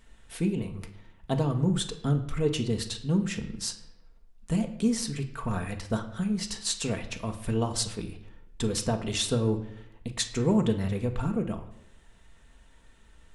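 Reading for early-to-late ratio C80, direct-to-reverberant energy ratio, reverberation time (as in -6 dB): 14.5 dB, 4.5 dB, 0.80 s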